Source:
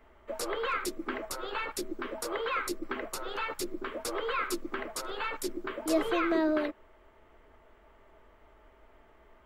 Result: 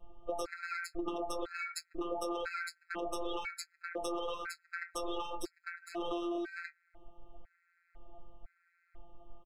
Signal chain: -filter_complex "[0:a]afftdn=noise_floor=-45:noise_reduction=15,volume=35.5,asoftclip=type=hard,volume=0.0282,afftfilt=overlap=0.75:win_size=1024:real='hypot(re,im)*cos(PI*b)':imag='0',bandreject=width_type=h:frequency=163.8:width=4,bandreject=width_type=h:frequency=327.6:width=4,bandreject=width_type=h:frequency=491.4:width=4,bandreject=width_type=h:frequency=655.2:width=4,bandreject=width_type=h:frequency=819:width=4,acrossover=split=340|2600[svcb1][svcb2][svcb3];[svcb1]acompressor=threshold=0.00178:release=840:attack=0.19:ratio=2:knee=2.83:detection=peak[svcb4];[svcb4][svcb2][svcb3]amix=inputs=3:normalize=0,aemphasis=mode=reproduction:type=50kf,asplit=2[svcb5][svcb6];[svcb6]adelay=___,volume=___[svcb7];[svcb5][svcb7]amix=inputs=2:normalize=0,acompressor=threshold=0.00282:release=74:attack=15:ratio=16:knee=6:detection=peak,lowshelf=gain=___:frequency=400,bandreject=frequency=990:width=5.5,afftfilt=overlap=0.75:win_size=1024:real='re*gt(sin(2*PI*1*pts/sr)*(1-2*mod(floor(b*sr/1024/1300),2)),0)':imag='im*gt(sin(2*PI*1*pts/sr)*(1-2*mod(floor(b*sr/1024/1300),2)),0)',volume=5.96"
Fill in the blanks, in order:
20, 0.2, 2.5